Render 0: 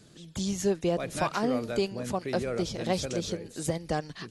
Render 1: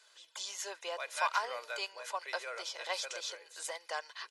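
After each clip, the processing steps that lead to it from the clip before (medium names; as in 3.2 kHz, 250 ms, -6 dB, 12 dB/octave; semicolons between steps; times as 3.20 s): high-pass 810 Hz 24 dB/octave; treble shelf 6.4 kHz -8 dB; comb 2 ms, depth 46%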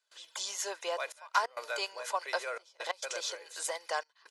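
dynamic bell 2.7 kHz, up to -4 dB, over -50 dBFS, Q 0.73; trance gate ".xxxxxxxxx..x" 134 bpm -24 dB; trim +6 dB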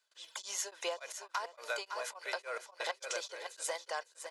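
feedback delay 555 ms, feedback 23%, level -12.5 dB; compression 6:1, threshold -35 dBFS, peak gain reduction 13 dB; tremolo of two beating tones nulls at 3.5 Hz; trim +3 dB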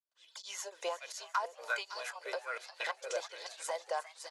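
fade-in on the opening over 0.71 s; frequency-shifting echo 354 ms, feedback 37%, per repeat +130 Hz, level -15 dB; sweeping bell 1.3 Hz 440–4800 Hz +12 dB; trim -4.5 dB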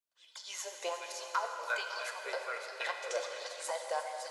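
plate-style reverb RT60 2.9 s, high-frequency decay 0.9×, DRR 3.5 dB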